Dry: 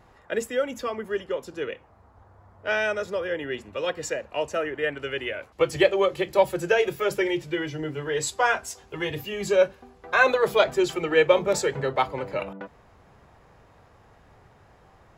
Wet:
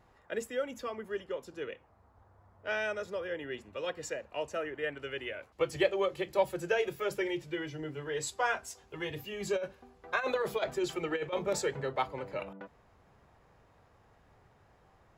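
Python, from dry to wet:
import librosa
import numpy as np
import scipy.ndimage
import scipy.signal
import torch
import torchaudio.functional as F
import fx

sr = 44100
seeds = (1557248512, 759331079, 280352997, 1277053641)

y = fx.over_compress(x, sr, threshold_db=-20.0, ratio=-0.5, at=(9.4, 11.75), fade=0.02)
y = y * 10.0 ** (-8.5 / 20.0)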